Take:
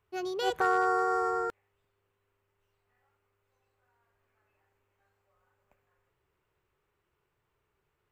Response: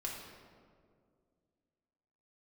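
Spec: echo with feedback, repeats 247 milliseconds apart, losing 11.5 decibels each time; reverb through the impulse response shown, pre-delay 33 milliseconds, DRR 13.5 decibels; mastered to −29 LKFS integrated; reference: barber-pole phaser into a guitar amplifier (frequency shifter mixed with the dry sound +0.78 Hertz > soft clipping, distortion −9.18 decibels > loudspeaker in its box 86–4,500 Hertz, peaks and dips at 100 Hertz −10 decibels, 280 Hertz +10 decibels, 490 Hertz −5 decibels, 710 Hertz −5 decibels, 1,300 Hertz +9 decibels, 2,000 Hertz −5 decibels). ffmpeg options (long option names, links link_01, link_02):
-filter_complex "[0:a]aecho=1:1:247|494|741:0.266|0.0718|0.0194,asplit=2[link_01][link_02];[1:a]atrim=start_sample=2205,adelay=33[link_03];[link_02][link_03]afir=irnorm=-1:irlink=0,volume=-14dB[link_04];[link_01][link_04]amix=inputs=2:normalize=0,asplit=2[link_05][link_06];[link_06]afreqshift=0.78[link_07];[link_05][link_07]amix=inputs=2:normalize=1,asoftclip=threshold=-32dB,highpass=86,equalizer=frequency=100:width_type=q:width=4:gain=-10,equalizer=frequency=280:width_type=q:width=4:gain=10,equalizer=frequency=490:width_type=q:width=4:gain=-5,equalizer=frequency=710:width_type=q:width=4:gain=-5,equalizer=frequency=1300:width_type=q:width=4:gain=9,equalizer=frequency=2000:width_type=q:width=4:gain=-5,lowpass=frequency=4500:width=0.5412,lowpass=frequency=4500:width=1.3066,volume=4.5dB"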